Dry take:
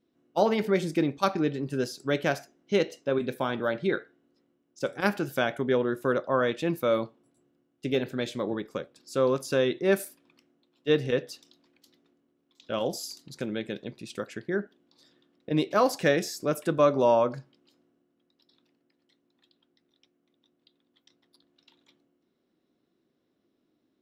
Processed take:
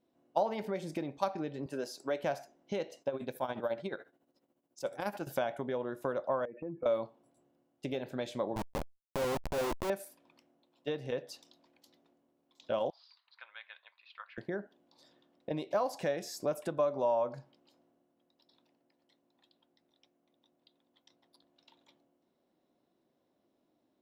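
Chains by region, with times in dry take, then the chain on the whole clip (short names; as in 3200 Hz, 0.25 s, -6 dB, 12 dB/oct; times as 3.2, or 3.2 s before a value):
1.66–2.23 HPF 260 Hz + bell 3300 Hz -3.5 dB 0.33 oct
3.01–5.27 high shelf 8600 Hz +10 dB + compressor 2:1, threshold -29 dBFS + tremolo 14 Hz, depth 73%
6.45–6.86 spectral contrast raised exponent 1.9 + steep low-pass 2400 Hz 96 dB/oct + compressor 5:1, threshold -34 dBFS
8.56–9.9 Schmitt trigger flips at -29 dBFS + fast leveller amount 50%
12.9–14.38 elliptic band-pass 1100–4400 Hz, stop band 60 dB + air absorption 310 m
whole clip: compressor, threshold -31 dBFS; band shelf 740 Hz +8.5 dB 1.1 oct; gain -3.5 dB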